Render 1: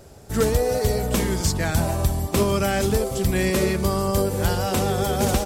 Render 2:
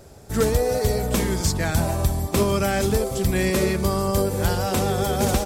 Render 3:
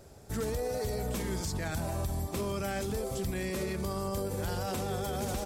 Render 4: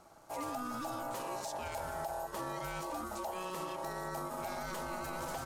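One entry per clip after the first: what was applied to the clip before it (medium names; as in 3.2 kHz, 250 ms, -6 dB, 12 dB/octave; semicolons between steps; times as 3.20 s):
band-stop 2.9 kHz, Q 28
peak limiter -18.5 dBFS, peak gain reduction 9 dB; trim -7 dB
ring modulator 740 Hz; trim -3.5 dB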